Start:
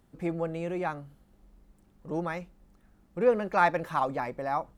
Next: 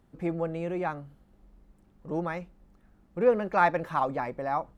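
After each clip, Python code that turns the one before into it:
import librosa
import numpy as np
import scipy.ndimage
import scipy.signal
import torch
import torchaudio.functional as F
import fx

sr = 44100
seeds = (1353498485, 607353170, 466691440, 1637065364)

y = fx.high_shelf(x, sr, hz=4000.0, db=-7.5)
y = y * 10.0 ** (1.0 / 20.0)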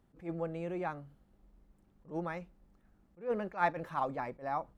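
y = fx.attack_slew(x, sr, db_per_s=230.0)
y = y * 10.0 ** (-6.0 / 20.0)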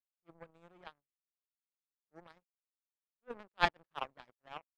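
y = fx.power_curve(x, sr, exponent=3.0)
y = y * 10.0 ** (9.0 / 20.0)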